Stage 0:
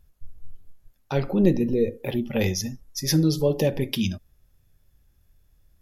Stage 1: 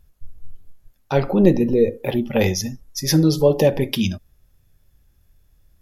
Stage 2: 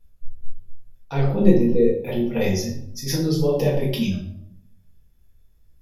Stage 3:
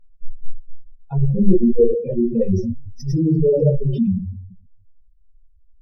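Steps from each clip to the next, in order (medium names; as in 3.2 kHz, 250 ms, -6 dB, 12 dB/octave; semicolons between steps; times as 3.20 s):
dynamic bell 840 Hz, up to +6 dB, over -36 dBFS, Q 0.74; trim +3.5 dB
reverberation RT60 0.70 s, pre-delay 4 ms, DRR -5.5 dB; trim -11 dB
spectral contrast enhancement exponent 2.9; tape noise reduction on one side only decoder only; trim +5 dB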